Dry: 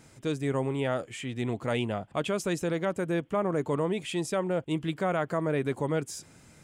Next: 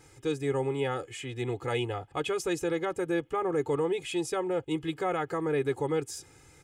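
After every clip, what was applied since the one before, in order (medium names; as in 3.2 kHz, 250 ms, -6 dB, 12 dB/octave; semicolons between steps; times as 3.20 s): comb 2.4 ms, depth 93%; trim -3 dB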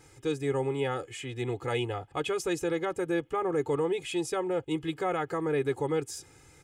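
no audible change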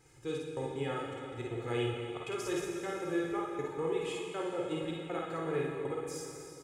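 trance gate "xxxx..x." 159 bpm; early reflections 50 ms -3.5 dB, 61 ms -6 dB; plate-style reverb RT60 3 s, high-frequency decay 0.95×, DRR 0.5 dB; trim -8.5 dB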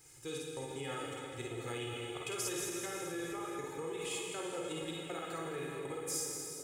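peak limiter -29.5 dBFS, peak gain reduction 8 dB; pre-emphasis filter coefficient 0.8; two-band feedback delay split 600 Hz, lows 743 ms, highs 212 ms, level -11.5 dB; trim +10 dB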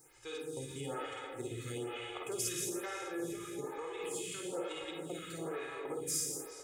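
lamp-driven phase shifter 1.1 Hz; trim +3 dB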